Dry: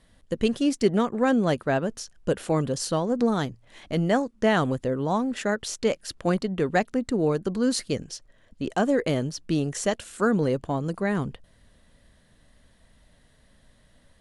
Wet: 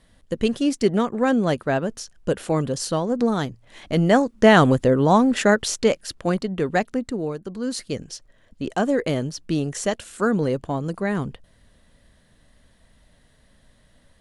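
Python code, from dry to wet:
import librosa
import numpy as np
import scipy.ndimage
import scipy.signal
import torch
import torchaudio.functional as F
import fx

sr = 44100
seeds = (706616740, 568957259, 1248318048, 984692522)

y = fx.gain(x, sr, db=fx.line((3.49, 2.0), (4.6, 9.0), (5.52, 9.0), (6.22, 1.5), (6.95, 1.5), (7.4, -6.5), (8.12, 1.5)))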